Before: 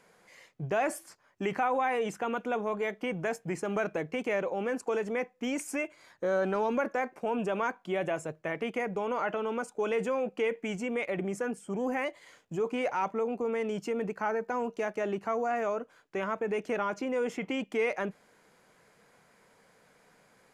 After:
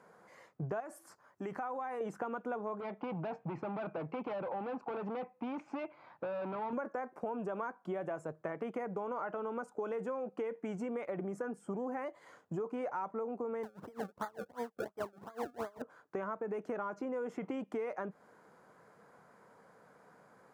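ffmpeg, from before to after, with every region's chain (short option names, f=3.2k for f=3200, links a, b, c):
-filter_complex "[0:a]asettb=1/sr,asplit=3[a][b][c];[a]atrim=end=0.804[d];[b]atrim=start=0.8:end=2.01,asetpts=PTS-STARTPTS,afade=t=in:d=0.004:c=qsin,afade=t=out:st=1.206:d=0.004:c=qsin,highshelf=f=4k:g=7,acompressor=threshold=-53dB:ratio=1.5:attack=3.2:release=140:knee=1:detection=peak[e];[c]atrim=start=2.006[f];[d][e]acrossfade=d=0.004:c1=hsin:c2=qsin[g];[g][f]acrossfade=d=0.004:c1=qsin:c2=hsin,asettb=1/sr,asplit=3[h][i][j];[h]atrim=end=2.804[k];[i]atrim=start=2.8:end=6.73,asetpts=PTS-STARTPTS,afade=t=in:d=0.004:c=qsin,afade=t=out:st=3.926:d=0.004:c=qsin,asoftclip=type=hard:threshold=-33.5dB,highpass=120,equalizer=f=130:t=q:w=4:g=7,equalizer=f=420:t=q:w=4:g=-5,equalizer=f=840:t=q:w=4:g=6,equalizer=f=1.7k:t=q:w=4:g=-6,equalizer=f=2.5k:t=q:w=4:g=7,lowpass=f=3.9k:w=0.5412,lowpass=f=3.9k:w=1.3066[l];[j]atrim=start=6.726[m];[k][l]acrossfade=d=0.004:c1=hsin:c2=qsin[n];[n][m]acrossfade=d=0.004:c1=qsin:c2=hsin,asettb=1/sr,asplit=3[o][p][q];[o]atrim=end=13.634[r];[p]atrim=start=13.63:end=15.82,asetpts=PTS-STARTPTS,afade=t=in:d=0.004:c=qsin,afade=t=out:st=2.186:d=0.004:c=qsin,acrusher=samples=31:mix=1:aa=0.000001:lfo=1:lforange=31:lforate=2.8,aeval=exprs='val(0)*pow(10,-31*(0.5-0.5*cos(2*PI*5*n/s))/20)':c=same[s];[q]atrim=start=15.816[t];[r][s]acrossfade=d=0.004:c1=hsin:c2=qsin[u];[u][t]acrossfade=d=0.004:c1=qsin:c2=hsin,highpass=91,highshelf=f=1.8k:t=q:w=1.5:g=-10,acompressor=threshold=-37dB:ratio=6,volume=1.5dB"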